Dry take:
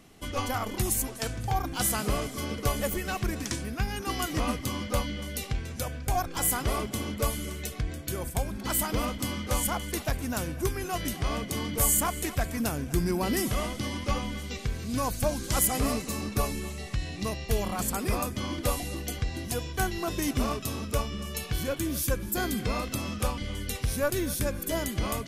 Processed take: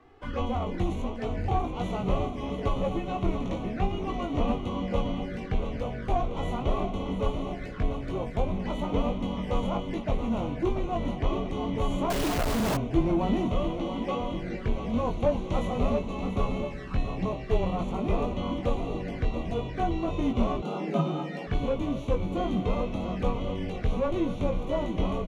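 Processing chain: formants flattened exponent 0.6; 13.70–14.33 s: steep high-pass 250 Hz 36 dB/octave; on a send: feedback delay 685 ms, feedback 56%, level -10 dB; on the sum: touch-sensitive flanger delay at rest 2.7 ms, full sweep at -28 dBFS; low-pass 1.4 kHz 12 dB/octave; doubling 20 ms -5 dB; in parallel at -4.5 dB: saturation -25.5 dBFS, distortion -12 dB; on the sum: frequency shift -18 Hz; 12.10–12.77 s: companded quantiser 2-bit; 20.62–21.47 s: frequency shift +130 Hz

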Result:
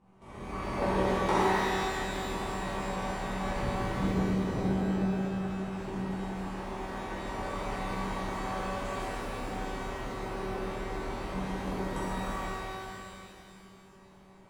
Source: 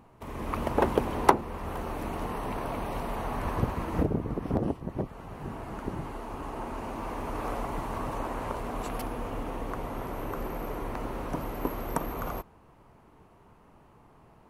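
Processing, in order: steep low-pass 10 kHz; feedback comb 190 Hz, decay 1.6 s, mix 90%; pitch-shifted reverb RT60 2.6 s, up +12 st, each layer -8 dB, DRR -11.5 dB; trim +3.5 dB

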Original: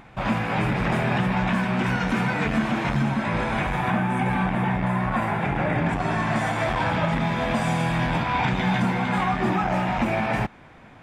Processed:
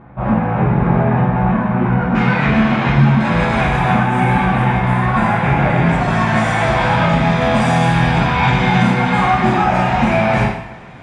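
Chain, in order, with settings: low-pass 1.1 kHz 12 dB/octave, from 2.15 s 4 kHz, from 3.20 s 9.1 kHz; two-slope reverb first 0.62 s, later 2.3 s, from -20 dB, DRR -6 dB; trim +2 dB

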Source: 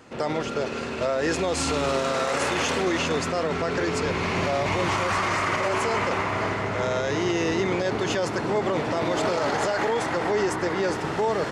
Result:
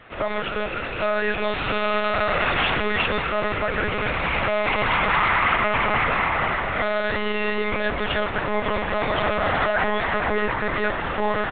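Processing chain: high-pass 130 Hz 6 dB/octave; bass shelf 170 Hz -6.5 dB; feedback delay 261 ms, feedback 57%, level -15 dB; monotone LPC vocoder at 8 kHz 210 Hz; peaking EQ 1.9 kHz +7.5 dB 2.5 oct

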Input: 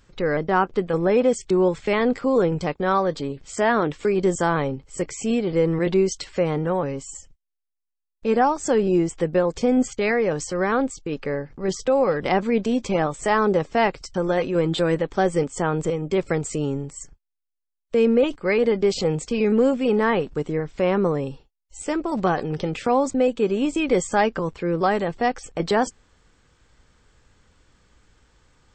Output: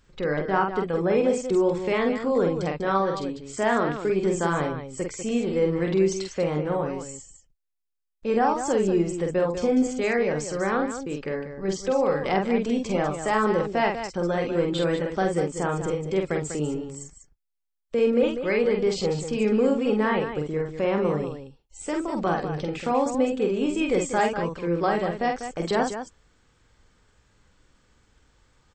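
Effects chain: loudspeakers at several distances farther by 16 m -4 dB, 67 m -9 dB; trim -4.5 dB

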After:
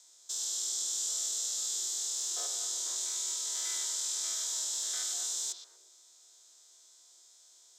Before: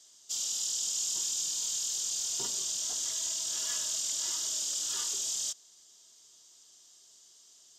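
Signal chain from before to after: spectrogram pixelated in time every 100 ms; bass shelf 83 Hz +11.5 dB; frequency shift +320 Hz; repeats whose band climbs or falls 118 ms, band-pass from 3.4 kHz, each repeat -1.4 oct, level -5 dB

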